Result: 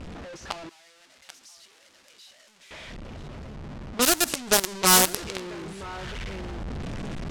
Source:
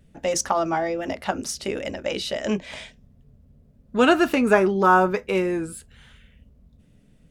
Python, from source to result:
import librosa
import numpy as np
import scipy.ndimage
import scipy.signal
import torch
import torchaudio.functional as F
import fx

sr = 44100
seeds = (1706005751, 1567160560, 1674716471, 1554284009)

y = fx.delta_mod(x, sr, bps=64000, step_db=-26.0)
y = y + 10.0 ** (-11.0 / 20.0) * np.pad(y, (int(985 * sr / 1000.0), 0))[:len(y)]
y = fx.quant_companded(y, sr, bits=2)
y = fx.env_lowpass(y, sr, base_hz=1900.0, full_db=-5.5)
y = fx.bass_treble(y, sr, bass_db=2, treble_db=14)
y = fx.rider(y, sr, range_db=10, speed_s=2.0)
y = fx.pre_emphasis(y, sr, coefficient=0.97, at=(0.69, 2.71))
y = F.gain(torch.from_numpy(y), -12.5).numpy()